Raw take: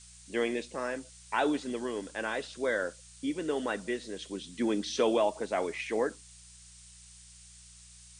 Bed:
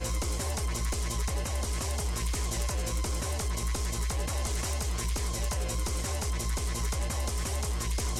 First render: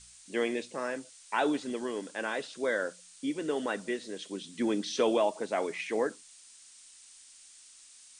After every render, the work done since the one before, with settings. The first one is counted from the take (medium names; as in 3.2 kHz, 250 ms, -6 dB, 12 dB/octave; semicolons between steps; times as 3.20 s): de-hum 60 Hz, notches 3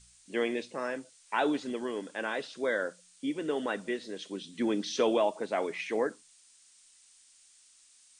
noise print and reduce 6 dB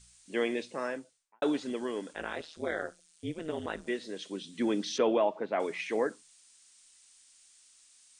0.82–1.42 s: studio fade out; 2.13–3.87 s: AM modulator 160 Hz, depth 95%; 4.98–5.60 s: low-pass 2.6 kHz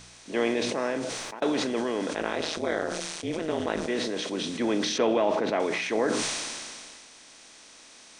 spectral levelling over time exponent 0.6; decay stretcher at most 26 dB/s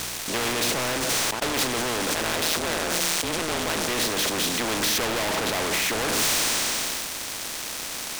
waveshaping leveller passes 5; spectrum-flattening compressor 2:1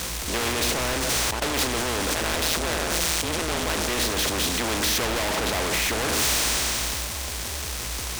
add bed -4.5 dB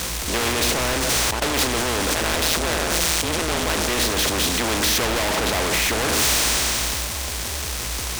trim +3.5 dB